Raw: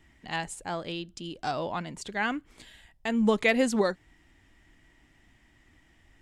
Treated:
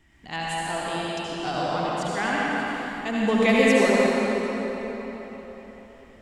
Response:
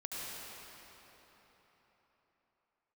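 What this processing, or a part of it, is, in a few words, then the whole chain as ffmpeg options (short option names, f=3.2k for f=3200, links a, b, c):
cathedral: -filter_complex "[1:a]atrim=start_sample=2205[a];[0:a][a]afir=irnorm=-1:irlink=0,volume=5dB"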